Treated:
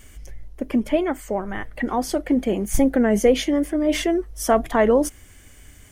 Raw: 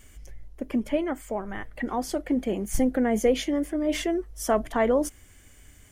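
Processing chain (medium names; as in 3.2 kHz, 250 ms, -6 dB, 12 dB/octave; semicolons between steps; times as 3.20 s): band-stop 7.2 kHz, Q 23; warped record 33 1/3 rpm, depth 100 cents; trim +5.5 dB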